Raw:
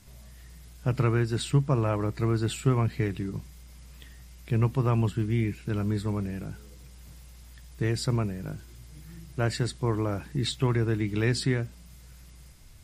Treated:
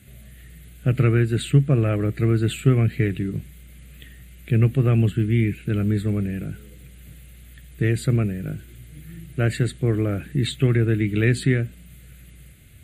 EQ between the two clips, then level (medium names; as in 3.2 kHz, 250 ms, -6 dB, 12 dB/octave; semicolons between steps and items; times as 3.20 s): high-pass 66 Hz; static phaser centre 2.3 kHz, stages 4; +7.5 dB